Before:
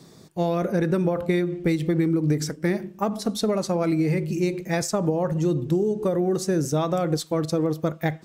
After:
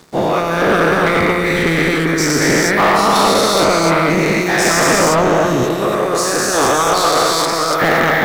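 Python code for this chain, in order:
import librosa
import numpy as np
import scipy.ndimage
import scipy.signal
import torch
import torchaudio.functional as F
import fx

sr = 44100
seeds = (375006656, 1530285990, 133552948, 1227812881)

y = fx.spec_dilate(x, sr, span_ms=480)
y = fx.low_shelf(y, sr, hz=340.0, db=-10.5, at=(5.63, 7.82))
y = fx.hpss(y, sr, part='harmonic', gain_db=-14)
y = fx.peak_eq(y, sr, hz=1400.0, db=8.5, octaves=1.6)
y = fx.leveller(y, sr, passes=3)
y = fx.rev_spring(y, sr, rt60_s=3.5, pass_ms=(30,), chirp_ms=30, drr_db=6.5)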